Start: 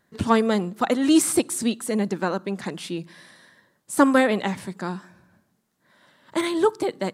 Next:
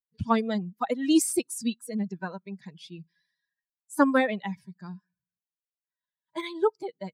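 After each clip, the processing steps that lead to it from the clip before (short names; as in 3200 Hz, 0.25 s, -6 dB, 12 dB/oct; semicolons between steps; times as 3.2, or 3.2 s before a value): per-bin expansion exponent 2; gain -2 dB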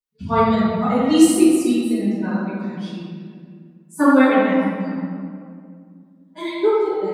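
reverb RT60 2.2 s, pre-delay 4 ms, DRR -16 dB; gain -7.5 dB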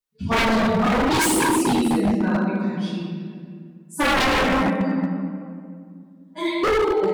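wavefolder -17 dBFS; gain +3 dB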